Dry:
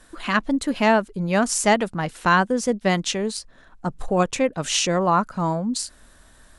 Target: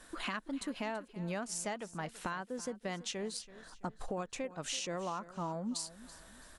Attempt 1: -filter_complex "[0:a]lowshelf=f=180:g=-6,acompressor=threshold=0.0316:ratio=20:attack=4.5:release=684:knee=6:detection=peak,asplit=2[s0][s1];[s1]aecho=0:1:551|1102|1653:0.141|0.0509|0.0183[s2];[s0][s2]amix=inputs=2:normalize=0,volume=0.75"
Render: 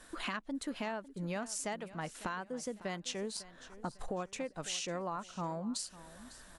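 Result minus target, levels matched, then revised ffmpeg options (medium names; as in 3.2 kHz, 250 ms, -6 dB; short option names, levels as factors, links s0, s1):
echo 220 ms late
-filter_complex "[0:a]lowshelf=f=180:g=-6,acompressor=threshold=0.0316:ratio=20:attack=4.5:release=684:knee=6:detection=peak,asplit=2[s0][s1];[s1]aecho=0:1:331|662|993:0.141|0.0509|0.0183[s2];[s0][s2]amix=inputs=2:normalize=0,volume=0.75"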